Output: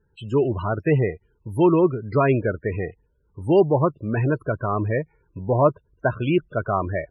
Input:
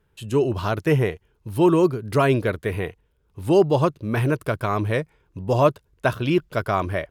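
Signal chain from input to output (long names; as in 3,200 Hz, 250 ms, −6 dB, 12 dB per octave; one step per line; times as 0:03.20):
spectral peaks only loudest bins 32
0:04.52–0:06.12: treble cut that deepens with the level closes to 2,100 Hz, closed at −15 dBFS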